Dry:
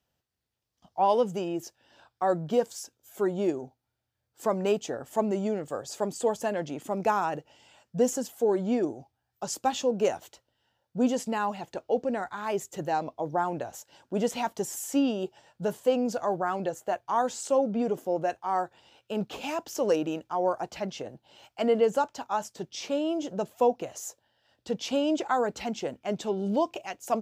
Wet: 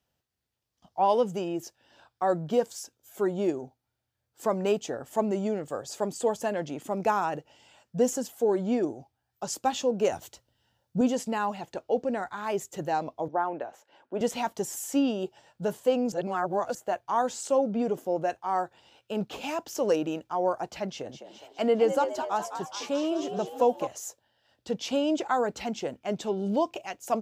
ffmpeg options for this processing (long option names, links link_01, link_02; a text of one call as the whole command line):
ffmpeg -i in.wav -filter_complex "[0:a]asettb=1/sr,asplit=3[link_01][link_02][link_03];[link_01]atrim=end=10.124[link_04];[link_02]atrim=start=10.12:end=11.01,asetpts=PTS-STARTPTS,afade=type=in:duration=0.004:curve=qsin,afade=type=out:start_time=0.886:duration=0.004:curve=qsin,bass=frequency=250:gain=8,treble=frequency=4000:gain=5[link_05];[link_03]atrim=start=11.006[link_06];[link_04][link_05]acrossfade=duration=0.004:curve1=hsin:curve2=qsin[link_07];[link_07][link_06]acrossfade=duration=0.004:curve1=qsin:curve2=hsin,asettb=1/sr,asplit=3[link_08][link_09][link_10];[link_08]atrim=end=13.284[link_11];[link_09]atrim=start=13.28:end=14.21,asetpts=PTS-STARTPTS,afade=type=in:duration=0.004:curve=qsin,afade=type=out:start_time=0.926:duration=0.004:curve=qsin,acrossover=split=250 3000:gain=0.141 1 0.126[link_12][link_13][link_14];[link_12][link_13][link_14]amix=inputs=3:normalize=0[link_15];[link_10]atrim=start=14.206[link_16];[link_11][link_15]acrossfade=duration=0.004:curve1=hsin:curve2=qsin[link_17];[link_17][link_16]acrossfade=duration=0.004:curve1=qsin:curve2=hsin,asettb=1/sr,asplit=3[link_18][link_19][link_20];[link_18]atrim=end=20.884[link_21];[link_19]atrim=start=20.88:end=23.87,asetpts=PTS-STARTPTS,afade=type=in:duration=0.004:curve=qsin,afade=type=out:start_time=2.986:duration=0.004:curve=qsin,asplit=7[link_22][link_23][link_24][link_25][link_26][link_27][link_28];[link_23]adelay=208,afreqshift=78,volume=-9dB[link_29];[link_24]adelay=416,afreqshift=156,volume=-14.4dB[link_30];[link_25]adelay=624,afreqshift=234,volume=-19.7dB[link_31];[link_26]adelay=832,afreqshift=312,volume=-25.1dB[link_32];[link_27]adelay=1040,afreqshift=390,volume=-30.4dB[link_33];[link_28]adelay=1248,afreqshift=468,volume=-35.8dB[link_34];[link_22][link_29][link_30][link_31][link_32][link_33][link_34]amix=inputs=7:normalize=0,atrim=end_sample=131859[link_35];[link_20]atrim=start=23.866[link_36];[link_21][link_35]acrossfade=duration=0.004:curve1=hsin:curve2=qsin[link_37];[link_37][link_36]acrossfade=duration=0.004:curve1=qsin:curve2=hsin,asplit=3[link_38][link_39][link_40];[link_38]atrim=end=16.122[link_41];[link_39]atrim=start=16.118:end=16.752,asetpts=PTS-STARTPTS,areverse[link_42];[link_40]atrim=start=16.748[link_43];[link_41][link_42]acrossfade=duration=0.004:curve1=hsin:curve2=hsin[link_44];[link_44][link_43]acrossfade=duration=0.004:curve1=hsin:curve2=hsin" out.wav